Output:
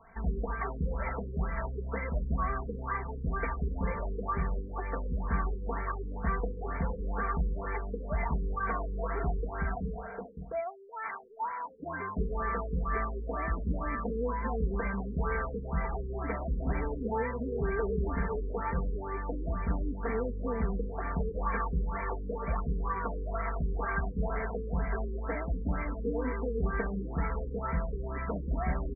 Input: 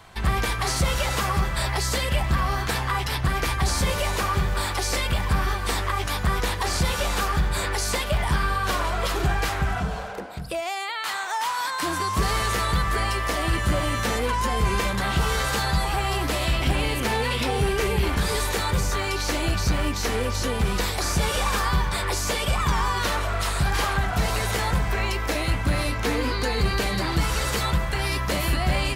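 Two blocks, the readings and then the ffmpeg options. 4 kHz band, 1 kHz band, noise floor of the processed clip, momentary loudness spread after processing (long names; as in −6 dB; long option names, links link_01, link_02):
below −40 dB, −10.0 dB, −40 dBFS, 4 LU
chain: -af "areverse,acompressor=mode=upward:threshold=-41dB:ratio=2.5,areverse,aecho=1:1:4.4:0.8,afftfilt=real='re*lt(b*sr/1024,490*pow(2400/490,0.5+0.5*sin(2*PI*2.1*pts/sr)))':imag='im*lt(b*sr/1024,490*pow(2400/490,0.5+0.5*sin(2*PI*2.1*pts/sr)))':win_size=1024:overlap=0.75,volume=-9dB"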